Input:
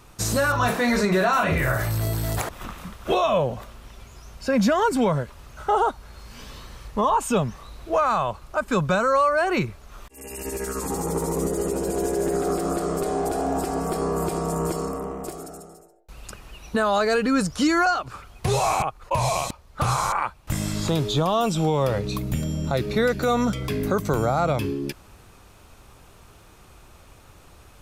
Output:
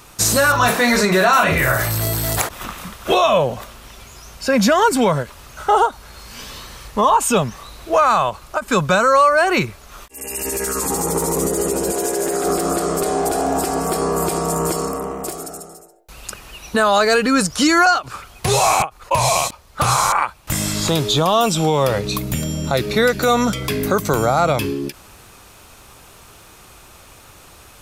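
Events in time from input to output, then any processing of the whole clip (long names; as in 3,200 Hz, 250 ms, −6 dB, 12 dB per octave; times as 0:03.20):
0:11.92–0:12.44: low-shelf EQ 210 Hz −11.5 dB
whole clip: spectral tilt +1.5 dB per octave; every ending faded ahead of time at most 340 dB per second; level +7 dB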